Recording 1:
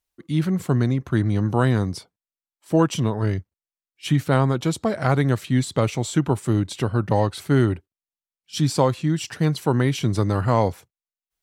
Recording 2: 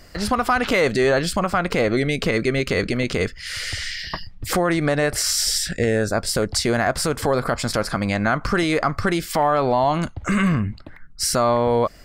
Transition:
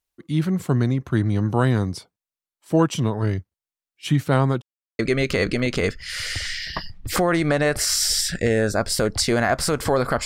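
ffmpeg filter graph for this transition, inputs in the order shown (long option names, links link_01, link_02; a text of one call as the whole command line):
ffmpeg -i cue0.wav -i cue1.wav -filter_complex "[0:a]apad=whole_dur=10.25,atrim=end=10.25,asplit=2[link_01][link_02];[link_01]atrim=end=4.62,asetpts=PTS-STARTPTS,afade=type=out:start_time=4.616:duration=0.004:curve=hsin[link_03];[link_02]atrim=start=4.62:end=4.99,asetpts=PTS-STARTPTS,volume=0[link_04];[1:a]atrim=start=2.36:end=7.62,asetpts=PTS-STARTPTS,afade=type=in:duration=0.004:curve=hsin[link_05];[link_03][link_04][link_05]concat=n=3:v=0:a=1" out.wav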